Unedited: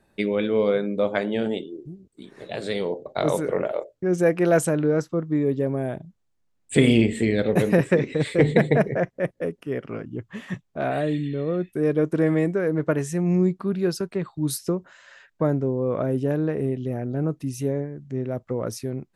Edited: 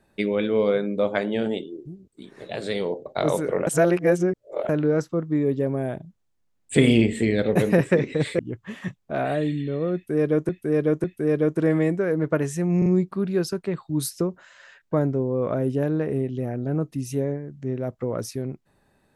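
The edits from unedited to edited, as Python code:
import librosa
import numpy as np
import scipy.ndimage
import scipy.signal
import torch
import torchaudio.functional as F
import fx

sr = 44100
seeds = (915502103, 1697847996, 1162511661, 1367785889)

y = fx.edit(x, sr, fx.reverse_span(start_s=3.67, length_s=1.02),
    fx.cut(start_s=8.39, length_s=1.66),
    fx.repeat(start_s=11.6, length_s=0.55, count=3),
    fx.stutter(start_s=13.34, slice_s=0.04, count=3), tone=tone)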